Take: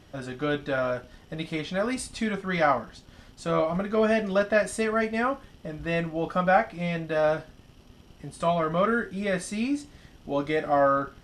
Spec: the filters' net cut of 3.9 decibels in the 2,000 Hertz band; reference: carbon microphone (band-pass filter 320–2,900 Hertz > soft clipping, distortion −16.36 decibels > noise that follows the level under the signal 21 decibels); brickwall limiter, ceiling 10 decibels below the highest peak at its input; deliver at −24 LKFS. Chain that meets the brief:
parametric band 2,000 Hz −4.5 dB
brickwall limiter −19.5 dBFS
band-pass filter 320–2,900 Hz
soft clipping −24.5 dBFS
noise that follows the level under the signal 21 dB
level +10 dB

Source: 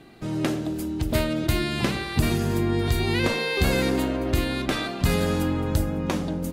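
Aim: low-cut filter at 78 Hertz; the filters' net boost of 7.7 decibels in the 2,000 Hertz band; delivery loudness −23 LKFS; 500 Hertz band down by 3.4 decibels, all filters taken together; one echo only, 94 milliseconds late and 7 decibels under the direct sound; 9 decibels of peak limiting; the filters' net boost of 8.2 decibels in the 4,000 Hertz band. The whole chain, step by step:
high-pass filter 78 Hz
parametric band 500 Hz −5 dB
parametric band 2,000 Hz +7.5 dB
parametric band 4,000 Hz +7.5 dB
brickwall limiter −12 dBFS
single-tap delay 94 ms −7 dB

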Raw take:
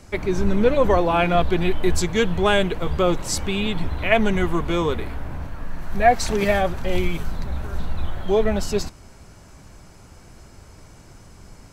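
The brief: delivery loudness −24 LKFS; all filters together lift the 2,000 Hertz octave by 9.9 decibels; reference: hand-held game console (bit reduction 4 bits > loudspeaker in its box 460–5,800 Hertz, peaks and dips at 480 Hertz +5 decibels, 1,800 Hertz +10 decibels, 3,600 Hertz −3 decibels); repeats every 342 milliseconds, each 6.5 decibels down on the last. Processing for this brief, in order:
parametric band 2,000 Hz +5 dB
repeating echo 342 ms, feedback 47%, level −6.5 dB
bit reduction 4 bits
loudspeaker in its box 460–5,800 Hz, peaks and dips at 480 Hz +5 dB, 1,800 Hz +10 dB, 3,600 Hz −3 dB
level −5.5 dB

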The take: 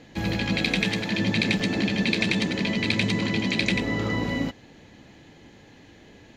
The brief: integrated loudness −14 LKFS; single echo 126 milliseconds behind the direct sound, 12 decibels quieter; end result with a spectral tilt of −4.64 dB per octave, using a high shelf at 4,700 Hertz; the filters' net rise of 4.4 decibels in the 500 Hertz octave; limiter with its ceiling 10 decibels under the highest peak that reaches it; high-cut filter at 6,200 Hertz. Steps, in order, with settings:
low-pass filter 6,200 Hz
parametric band 500 Hz +5.5 dB
high-shelf EQ 4,700 Hz −6 dB
brickwall limiter −17.5 dBFS
single-tap delay 126 ms −12 dB
level +13 dB

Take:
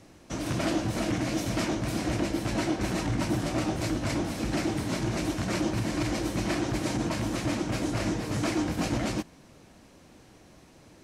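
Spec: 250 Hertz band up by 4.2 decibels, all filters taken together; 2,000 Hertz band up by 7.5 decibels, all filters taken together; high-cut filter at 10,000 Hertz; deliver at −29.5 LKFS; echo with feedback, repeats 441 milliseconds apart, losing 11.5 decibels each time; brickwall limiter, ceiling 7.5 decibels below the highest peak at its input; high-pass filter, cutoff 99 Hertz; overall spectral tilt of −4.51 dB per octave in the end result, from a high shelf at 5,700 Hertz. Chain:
high-pass filter 99 Hz
low-pass filter 10,000 Hz
parametric band 250 Hz +5.5 dB
parametric band 2,000 Hz +8 dB
high-shelf EQ 5,700 Hz +8 dB
brickwall limiter −19.5 dBFS
repeating echo 441 ms, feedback 27%, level −11.5 dB
level −1 dB

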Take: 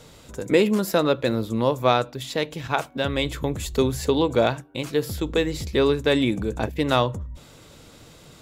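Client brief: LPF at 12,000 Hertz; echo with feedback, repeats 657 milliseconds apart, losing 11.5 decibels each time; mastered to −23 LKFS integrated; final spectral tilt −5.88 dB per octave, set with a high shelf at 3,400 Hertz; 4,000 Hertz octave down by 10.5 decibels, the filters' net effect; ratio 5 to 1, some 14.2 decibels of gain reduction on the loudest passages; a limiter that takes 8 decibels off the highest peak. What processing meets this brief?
low-pass filter 12,000 Hz
high-shelf EQ 3,400 Hz −6.5 dB
parametric band 4,000 Hz −8.5 dB
downward compressor 5 to 1, threshold −31 dBFS
brickwall limiter −26 dBFS
repeating echo 657 ms, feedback 27%, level −11.5 dB
level +14 dB

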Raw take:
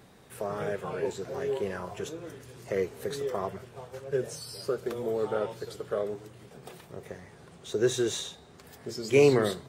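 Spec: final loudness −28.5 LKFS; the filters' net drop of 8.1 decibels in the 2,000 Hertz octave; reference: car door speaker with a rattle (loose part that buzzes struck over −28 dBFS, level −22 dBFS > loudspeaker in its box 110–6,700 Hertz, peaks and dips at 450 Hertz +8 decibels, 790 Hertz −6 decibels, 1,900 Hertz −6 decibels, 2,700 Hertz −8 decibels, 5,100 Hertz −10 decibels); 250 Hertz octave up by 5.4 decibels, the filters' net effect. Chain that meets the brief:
parametric band 250 Hz +6.5 dB
parametric band 2,000 Hz −5 dB
loose part that buzzes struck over −28 dBFS, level −22 dBFS
loudspeaker in its box 110–6,700 Hz, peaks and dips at 450 Hz +8 dB, 790 Hz −6 dB, 1,900 Hz −6 dB, 2,700 Hz −8 dB, 5,100 Hz −10 dB
level −4.5 dB

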